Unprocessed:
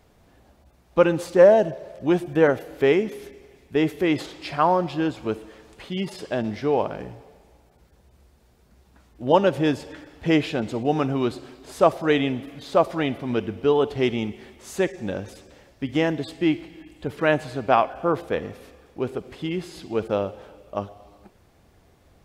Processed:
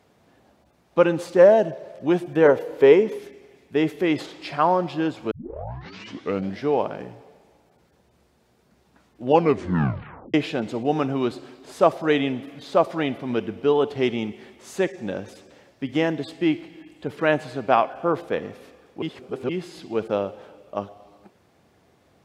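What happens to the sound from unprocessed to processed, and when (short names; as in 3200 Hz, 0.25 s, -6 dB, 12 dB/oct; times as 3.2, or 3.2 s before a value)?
2.45–3.19 small resonant body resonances 480/950 Hz, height 11 dB, ringing for 30 ms
5.31 tape start 1.31 s
9.26 tape stop 1.08 s
19.02–19.49 reverse
whole clip: HPF 130 Hz 12 dB/oct; high shelf 8900 Hz -6.5 dB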